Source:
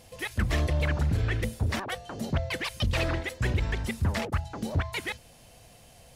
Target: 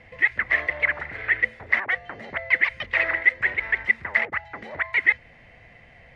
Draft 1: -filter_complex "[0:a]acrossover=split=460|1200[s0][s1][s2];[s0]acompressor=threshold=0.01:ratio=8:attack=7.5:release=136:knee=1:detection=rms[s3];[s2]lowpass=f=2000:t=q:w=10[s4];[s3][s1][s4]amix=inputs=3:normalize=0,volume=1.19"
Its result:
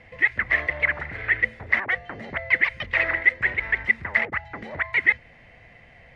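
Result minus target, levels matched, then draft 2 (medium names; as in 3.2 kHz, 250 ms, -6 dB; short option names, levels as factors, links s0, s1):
compression: peak gain reduction -6 dB
-filter_complex "[0:a]acrossover=split=460|1200[s0][s1][s2];[s0]acompressor=threshold=0.00447:ratio=8:attack=7.5:release=136:knee=1:detection=rms[s3];[s2]lowpass=f=2000:t=q:w=10[s4];[s3][s1][s4]amix=inputs=3:normalize=0,volume=1.19"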